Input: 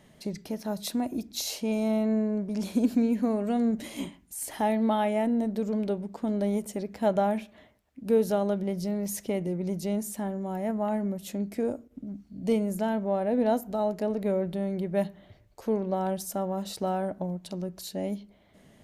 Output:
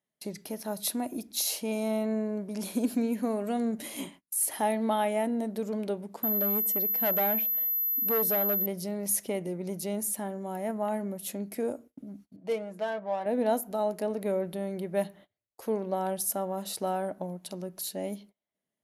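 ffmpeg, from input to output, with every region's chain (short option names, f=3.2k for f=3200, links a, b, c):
-filter_complex "[0:a]asettb=1/sr,asplit=3[a][b][c];[a]atrim=end=6.234[d];[b]atrim=start=6.23:end=8.66,asetpts=PTS-STARTPTS,afade=t=in:d=0.004:c=qsin,afade=t=out:st=2.426:d=0.004:c=qsin,volume=24.5dB,asoftclip=hard,volume=-24.5dB,aeval=exprs='val(0)+0.02*sin(2*PI*12000*n/s)':c=same[e];[c]atrim=start=8.656[f];[d][e]acrossfade=d=0.004:c1=hsin:c2=qsin[g];[g][f]acrossfade=d=0.004:c1=qsin:c2=hsin,asettb=1/sr,asplit=3[h][i][j];[h]atrim=end=12.364[k];[i]atrim=start=12.36:end=13.26,asetpts=PTS-STARTPTS,afade=t=in:d=0.004:c=qsin,afade=t=out:st=0.896:d=0.004:c=qsin,highpass=f=570:p=1,adynamicsmooth=sensitivity=6:basefreq=1.5k,aecho=1:1:6.3:0.62,atrim=end_sample=39690[l];[j]atrim=start=13.256[m];[k][l]acrossfade=d=0.004:c1=hsin:c2=qsin[n];[n][m]acrossfade=d=0.004:c1=qsin:c2=hsin,highpass=f=310:p=1,agate=range=-30dB:threshold=-50dB:ratio=16:detection=peak,equalizer=f=11k:w=2.7:g=13.5"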